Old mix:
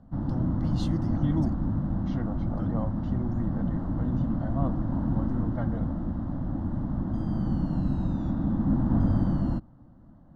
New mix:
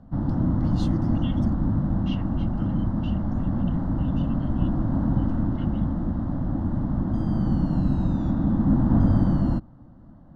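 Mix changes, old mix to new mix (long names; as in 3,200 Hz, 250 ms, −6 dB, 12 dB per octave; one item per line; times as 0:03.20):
second voice: add high-pass with resonance 2,800 Hz, resonance Q 12
background +4.5 dB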